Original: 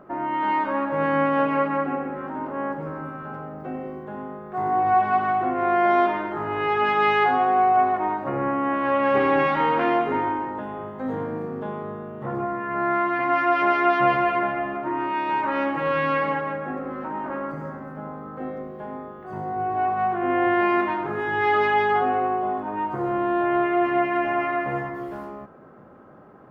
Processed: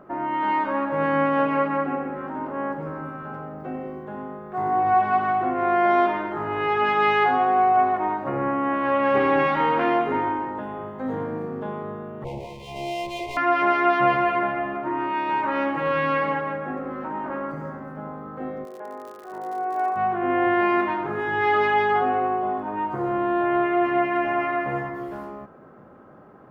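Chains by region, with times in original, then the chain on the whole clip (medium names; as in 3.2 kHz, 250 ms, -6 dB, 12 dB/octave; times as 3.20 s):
12.24–13.37 s: comb filter that takes the minimum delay 1.9 ms + elliptic band-stop 900–2300 Hz, stop band 50 dB
18.64–19.95 s: Chebyshev band-pass 390–2000 Hz + crackle 86 per s -36 dBFS
whole clip: none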